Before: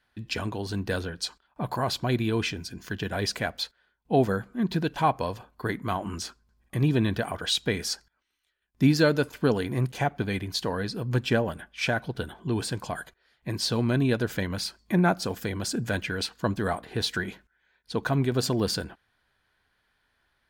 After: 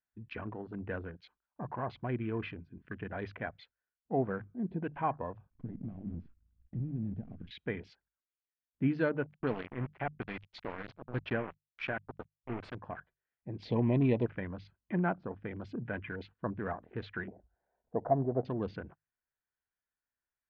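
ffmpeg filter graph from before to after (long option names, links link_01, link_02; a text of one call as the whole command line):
ffmpeg -i in.wav -filter_complex "[0:a]asettb=1/sr,asplit=3[link_01][link_02][link_03];[link_01]atrim=end=5.504[link_04];[link_02]atrim=start=5.5:end=7.51,asetpts=PTS-STARTPTS,afade=type=in:duration=0.004:curve=qsin,afade=type=out:start_time=2.006:duration=0.004:curve=qsin,acompressor=threshold=-43dB:ratio=3:attack=3.2:release=140:knee=1:detection=peak,acrusher=bits=8:dc=4:mix=0:aa=0.000001,lowshelf=frequency=330:width_type=q:width=1.5:gain=12.5[link_05];[link_03]atrim=start=7.506[link_06];[link_04][link_05]acrossfade=duration=0.004:curve1=hsin:curve2=qsin[link_07];[link_07][link_06]acrossfade=duration=0.004:curve1=qsin:curve2=hsin,asettb=1/sr,asplit=3[link_08][link_09][link_10];[link_08]atrim=end=9.264[link_11];[link_09]atrim=start=9.26:end=12.75,asetpts=PTS-STARTPTS,afade=type=in:duration=0.004:curve=qsin,afade=type=out:start_time=3.486:duration=0.004:curve=qsin,aemphasis=mode=production:type=75fm,aeval=exprs='val(0)*gte(abs(val(0)),0.0501)':channel_layout=same[link_12];[link_10]atrim=start=12.746[link_13];[link_11][link_12]acrossfade=duration=0.004:curve1=hsin:curve2=qsin[link_14];[link_14][link_13]acrossfade=duration=0.004:curve1=qsin:curve2=hsin,asettb=1/sr,asplit=3[link_15][link_16][link_17];[link_15]atrim=end=13.624[link_18];[link_16]atrim=start=13.62:end=14.26,asetpts=PTS-STARTPTS,afade=type=in:duration=0.004:curve=qsin,afade=type=out:start_time=0.636:duration=0.004:curve=qsin,acontrast=46,asuperstop=centerf=1400:order=20:qfactor=1.9[link_19];[link_17]atrim=start=14.256[link_20];[link_18][link_19]acrossfade=duration=0.004:curve1=hsin:curve2=qsin[link_21];[link_21][link_20]acrossfade=duration=0.004:curve1=qsin:curve2=hsin,asettb=1/sr,asplit=3[link_22][link_23][link_24];[link_22]atrim=end=17.284[link_25];[link_23]atrim=start=17.28:end=18.45,asetpts=PTS-STARTPTS,afade=type=in:duration=0.004:curve=qsin,afade=type=out:start_time=1.166:duration=0.004:curve=qsin,acompressor=mode=upward:threshold=-36dB:ratio=2.5:attack=3.2:release=140:knee=2.83:detection=peak,lowpass=frequency=680:width_type=q:width=4.9[link_26];[link_24]atrim=start=18.446[link_27];[link_25][link_26]acrossfade=duration=0.004:curve1=hsin:curve2=qsin[link_28];[link_28][link_27]acrossfade=duration=0.004:curve1=qsin:curve2=hsin,bandreject=frequency=50:width_type=h:width=6,bandreject=frequency=100:width_type=h:width=6,bandreject=frequency=150:width_type=h:width=6,afwtdn=0.0126,lowpass=frequency=2500:width=0.5412,lowpass=frequency=2500:width=1.3066,volume=-9dB" out.wav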